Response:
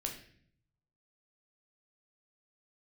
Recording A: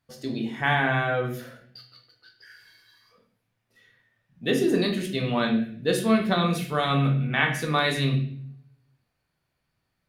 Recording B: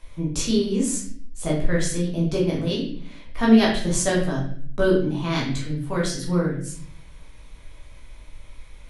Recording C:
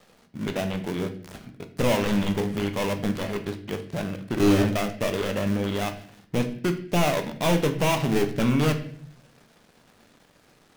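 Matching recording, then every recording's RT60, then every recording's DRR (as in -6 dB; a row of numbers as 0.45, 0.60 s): A; 0.55, 0.55, 0.60 s; 1.5, -5.0, 6.5 dB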